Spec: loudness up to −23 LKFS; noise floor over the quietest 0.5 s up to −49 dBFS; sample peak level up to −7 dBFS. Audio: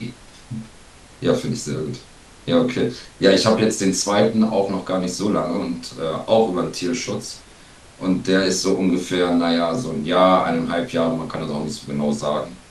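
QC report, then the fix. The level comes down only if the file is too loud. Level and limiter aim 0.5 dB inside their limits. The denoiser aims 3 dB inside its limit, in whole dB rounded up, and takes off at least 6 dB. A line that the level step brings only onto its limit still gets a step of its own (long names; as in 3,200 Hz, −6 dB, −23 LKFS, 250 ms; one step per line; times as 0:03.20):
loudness −20.5 LKFS: out of spec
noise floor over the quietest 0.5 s −45 dBFS: out of spec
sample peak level −2.5 dBFS: out of spec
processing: broadband denoise 6 dB, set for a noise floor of −45 dBFS
level −3 dB
brickwall limiter −7.5 dBFS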